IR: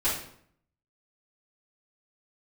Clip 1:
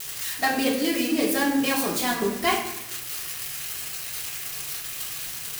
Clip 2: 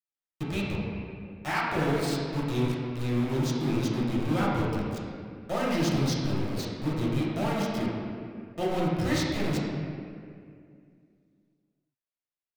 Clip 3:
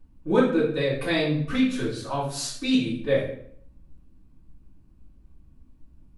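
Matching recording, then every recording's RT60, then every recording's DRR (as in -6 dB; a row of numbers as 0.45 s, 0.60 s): 3; 0.85 s, 2.3 s, 0.65 s; -5.5 dB, -7.0 dB, -11.5 dB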